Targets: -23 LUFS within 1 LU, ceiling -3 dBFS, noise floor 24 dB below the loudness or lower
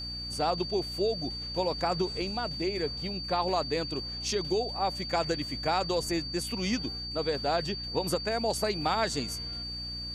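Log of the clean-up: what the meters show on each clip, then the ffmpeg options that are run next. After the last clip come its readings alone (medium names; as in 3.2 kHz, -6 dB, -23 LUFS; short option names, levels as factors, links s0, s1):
hum 60 Hz; highest harmonic 300 Hz; hum level -40 dBFS; steady tone 4.6 kHz; tone level -36 dBFS; loudness -30.5 LUFS; peak level -14.5 dBFS; loudness target -23.0 LUFS
-> -af "bandreject=f=60:t=h:w=6,bandreject=f=120:t=h:w=6,bandreject=f=180:t=h:w=6,bandreject=f=240:t=h:w=6,bandreject=f=300:t=h:w=6"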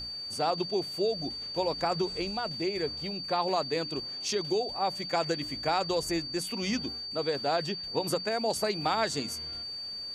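hum not found; steady tone 4.6 kHz; tone level -36 dBFS
-> -af "bandreject=f=4600:w=30"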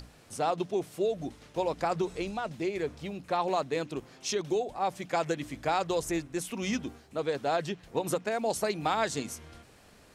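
steady tone not found; loudness -32.0 LUFS; peak level -15.5 dBFS; loudness target -23.0 LUFS
-> -af "volume=2.82"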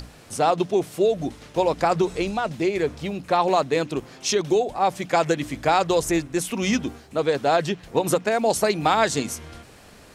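loudness -23.0 LUFS; peak level -6.5 dBFS; noise floor -48 dBFS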